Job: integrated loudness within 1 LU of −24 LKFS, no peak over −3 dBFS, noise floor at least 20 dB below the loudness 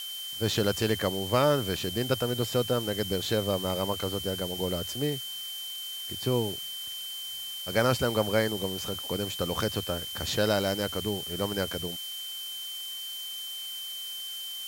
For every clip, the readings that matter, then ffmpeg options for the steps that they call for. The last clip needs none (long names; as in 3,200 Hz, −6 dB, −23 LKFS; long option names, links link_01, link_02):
interfering tone 3,100 Hz; level of the tone −36 dBFS; background noise floor −38 dBFS; target noise floor −50 dBFS; integrated loudness −30.0 LKFS; sample peak −10.5 dBFS; target loudness −24.0 LKFS
→ -af "bandreject=frequency=3100:width=30"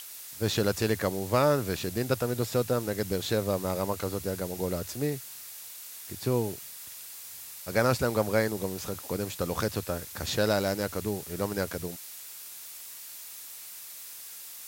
interfering tone none found; background noise floor −44 dBFS; target noise floor −51 dBFS
→ -af "afftdn=noise_reduction=7:noise_floor=-44"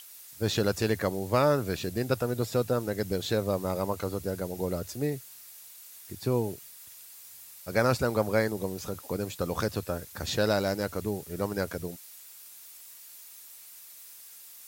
background noise floor −49 dBFS; target noise floor −50 dBFS
→ -af "afftdn=noise_reduction=6:noise_floor=-49"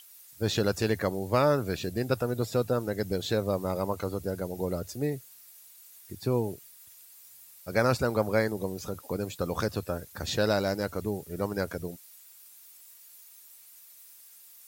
background noise floor −53 dBFS; integrated loudness −30.0 LKFS; sample peak −11.0 dBFS; target loudness −24.0 LKFS
→ -af "volume=6dB"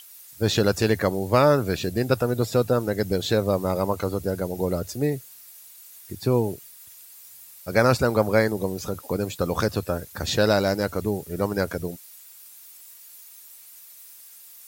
integrated loudness −24.0 LKFS; sample peak −5.0 dBFS; background noise floor −47 dBFS